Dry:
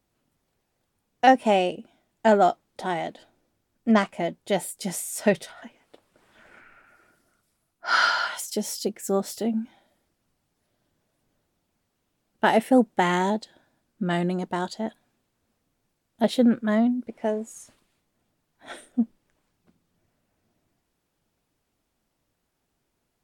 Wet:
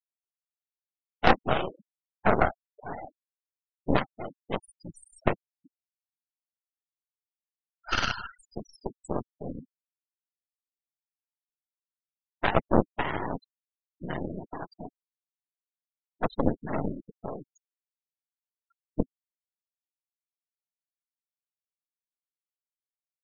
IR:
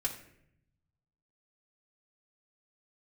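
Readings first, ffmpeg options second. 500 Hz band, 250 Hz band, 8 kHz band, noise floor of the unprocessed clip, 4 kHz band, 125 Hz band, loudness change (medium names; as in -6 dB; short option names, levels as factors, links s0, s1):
-7.0 dB, -9.0 dB, -17.5 dB, -77 dBFS, -6.0 dB, -1.0 dB, -6.0 dB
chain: -filter_complex "[0:a]asplit=2[s0][s1];[1:a]atrim=start_sample=2205,asetrate=66150,aresample=44100[s2];[s1][s2]afir=irnorm=-1:irlink=0,volume=0.0891[s3];[s0][s3]amix=inputs=2:normalize=0,afftfilt=real='hypot(re,im)*cos(2*PI*random(0))':imag='hypot(re,im)*sin(2*PI*random(1))':win_size=512:overlap=0.75,aeval=exprs='0.422*(cos(1*acos(clip(val(0)/0.422,-1,1)))-cos(1*PI/2))+0.0668*(cos(2*acos(clip(val(0)/0.422,-1,1)))-cos(2*PI/2))+0.188*(cos(4*acos(clip(val(0)/0.422,-1,1)))-cos(4*PI/2))+0.0299*(cos(7*acos(clip(val(0)/0.422,-1,1)))-cos(7*PI/2))':c=same,afftfilt=real='re*gte(hypot(re,im),0.0224)':imag='im*gte(hypot(re,im),0.0224)':win_size=1024:overlap=0.75"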